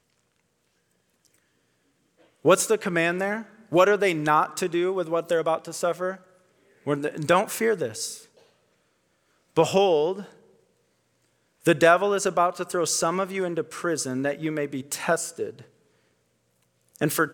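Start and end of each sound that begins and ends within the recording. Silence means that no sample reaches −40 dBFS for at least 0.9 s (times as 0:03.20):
0:02.45–0:08.24
0:09.56–0:10.27
0:11.65–0:15.62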